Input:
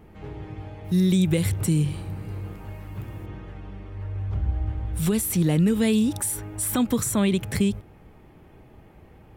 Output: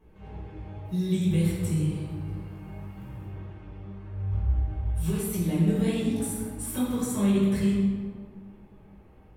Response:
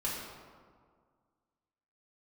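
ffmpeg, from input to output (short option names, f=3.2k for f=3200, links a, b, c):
-filter_complex "[0:a]flanger=delay=16:depth=4.7:speed=2[a];[1:a]atrim=start_sample=2205,asetrate=41013,aresample=44100[b];[a][b]afir=irnorm=-1:irlink=0,volume=-8dB"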